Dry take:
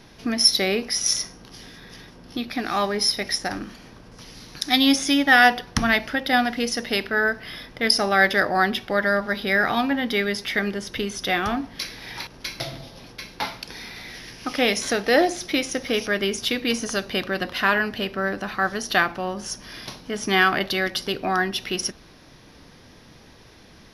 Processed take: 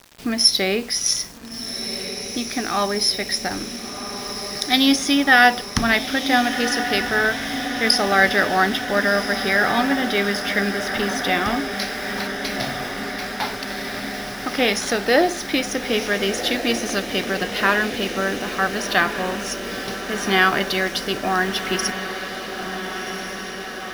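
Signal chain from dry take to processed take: bit-crush 7-bit; diffused feedback echo 1.445 s, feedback 72%, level -9 dB; gain +1.5 dB

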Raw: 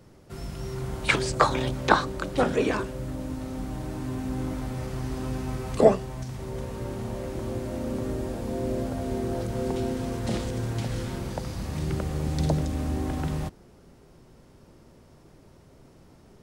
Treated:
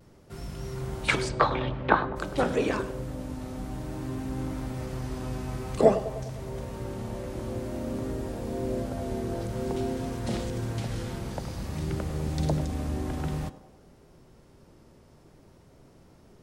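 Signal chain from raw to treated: 1.28–2.15 LPF 4600 Hz -> 2500 Hz 24 dB/oct; de-hum 253.7 Hz, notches 39; vibrato 0.52 Hz 21 cents; narrowing echo 0.101 s, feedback 61%, band-pass 580 Hz, level -12 dB; gain -2 dB

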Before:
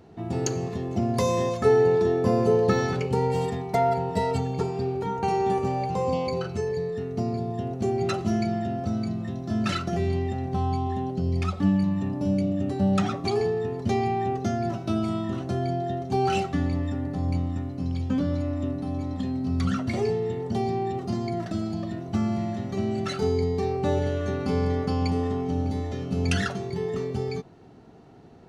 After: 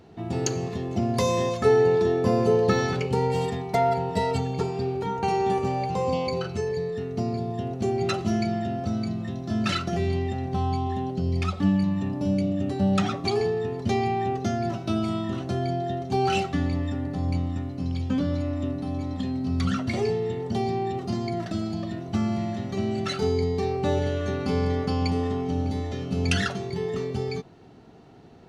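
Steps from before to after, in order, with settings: bell 3400 Hz +4 dB 1.6 oct

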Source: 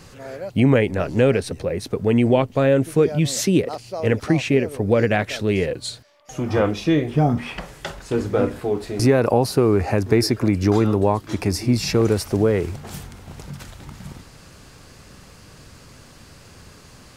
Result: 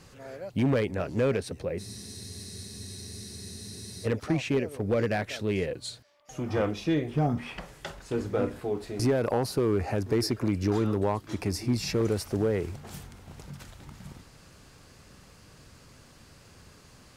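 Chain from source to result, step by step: one-sided clip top -11 dBFS; spectral freeze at 1.81, 2.25 s; gain -8 dB

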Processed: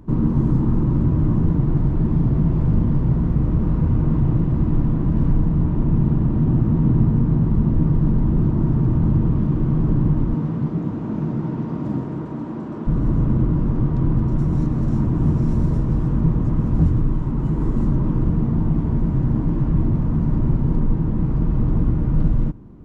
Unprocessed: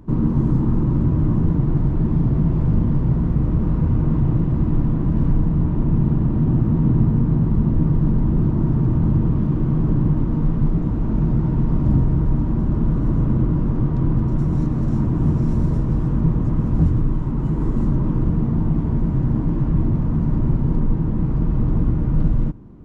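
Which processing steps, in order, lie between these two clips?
10.34–12.86 HPF 120 Hz -> 320 Hz 12 dB/oct

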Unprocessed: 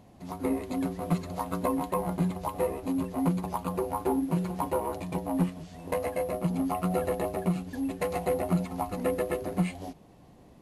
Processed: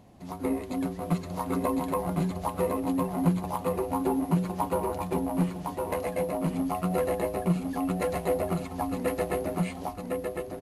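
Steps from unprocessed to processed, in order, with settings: echo 1.057 s -3.5 dB

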